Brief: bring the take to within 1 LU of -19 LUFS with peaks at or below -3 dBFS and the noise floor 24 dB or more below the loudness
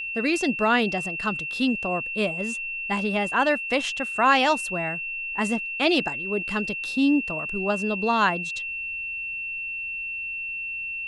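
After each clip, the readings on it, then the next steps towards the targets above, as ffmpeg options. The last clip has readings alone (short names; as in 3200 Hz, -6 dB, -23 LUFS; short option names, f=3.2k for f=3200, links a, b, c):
steady tone 2700 Hz; tone level -29 dBFS; loudness -24.5 LUFS; peak -7.0 dBFS; loudness target -19.0 LUFS
-> -af "bandreject=f=2.7k:w=30"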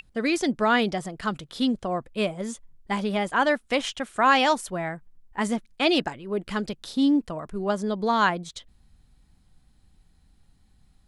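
steady tone none; loudness -25.5 LUFS; peak -7.5 dBFS; loudness target -19.0 LUFS
-> -af "volume=6.5dB,alimiter=limit=-3dB:level=0:latency=1"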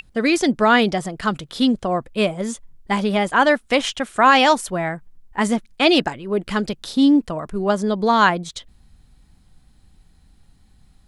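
loudness -19.0 LUFS; peak -3.0 dBFS; noise floor -55 dBFS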